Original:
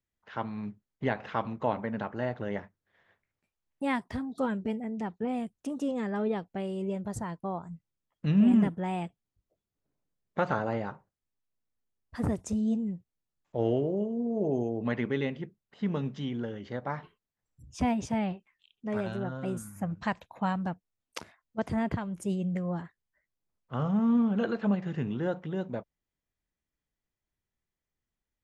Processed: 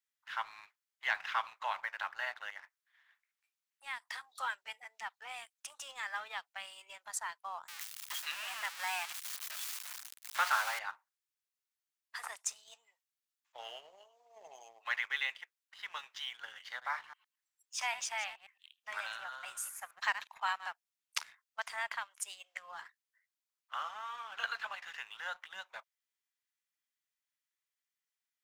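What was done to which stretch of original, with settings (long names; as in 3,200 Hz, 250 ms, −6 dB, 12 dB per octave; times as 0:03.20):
0:02.50–0:04.10: downward compressor 2.5 to 1, threshold −41 dBFS
0:07.68–0:10.79: converter with a step at zero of −35.5 dBFS
0:16.58–0:20.67: delay that plays each chunk backwards 111 ms, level −12 dB
whole clip: Bessel high-pass filter 1,600 Hz, order 6; leveller curve on the samples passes 1; level +3.5 dB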